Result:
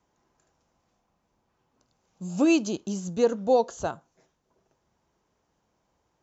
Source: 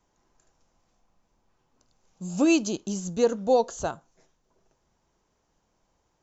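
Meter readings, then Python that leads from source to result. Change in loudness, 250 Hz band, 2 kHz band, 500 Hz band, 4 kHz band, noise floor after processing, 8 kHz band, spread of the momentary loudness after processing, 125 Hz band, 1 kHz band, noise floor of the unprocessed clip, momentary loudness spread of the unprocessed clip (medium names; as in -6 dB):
0.0 dB, 0.0 dB, -1.0 dB, 0.0 dB, -2.0 dB, -75 dBFS, no reading, 14 LU, 0.0 dB, 0.0 dB, -73 dBFS, 14 LU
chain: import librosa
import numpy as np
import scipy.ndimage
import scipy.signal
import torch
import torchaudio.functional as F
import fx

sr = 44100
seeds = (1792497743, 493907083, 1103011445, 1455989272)

y = scipy.signal.sosfilt(scipy.signal.butter(2, 57.0, 'highpass', fs=sr, output='sos'), x)
y = fx.high_shelf(y, sr, hz=6200.0, db=-7.5)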